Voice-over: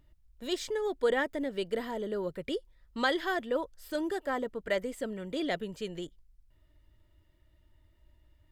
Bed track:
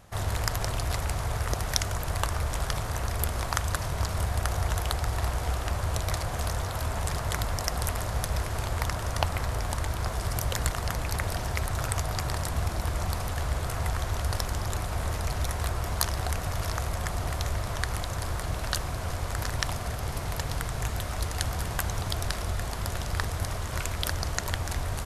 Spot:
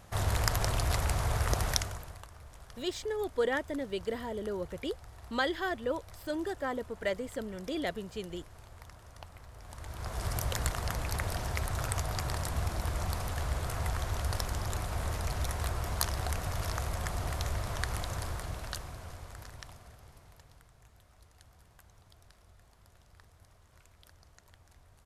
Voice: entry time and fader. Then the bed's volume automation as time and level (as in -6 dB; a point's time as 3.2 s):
2.35 s, -2.0 dB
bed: 1.69 s -0.5 dB
2.26 s -22 dB
9.52 s -22 dB
10.24 s -4 dB
18.14 s -4 dB
20.77 s -29.5 dB